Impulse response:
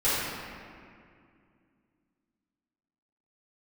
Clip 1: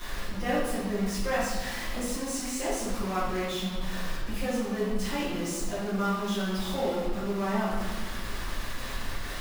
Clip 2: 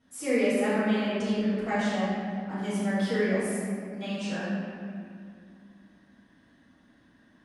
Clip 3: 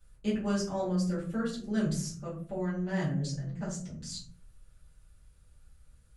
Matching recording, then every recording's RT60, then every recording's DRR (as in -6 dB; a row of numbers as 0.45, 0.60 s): 2; 1.4, 2.3, 0.50 s; -12.5, -13.0, -10.0 dB